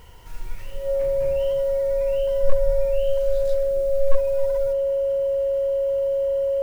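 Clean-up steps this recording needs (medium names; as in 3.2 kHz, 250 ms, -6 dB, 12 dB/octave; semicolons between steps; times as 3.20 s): clip repair -6 dBFS; band-stop 550 Hz, Q 30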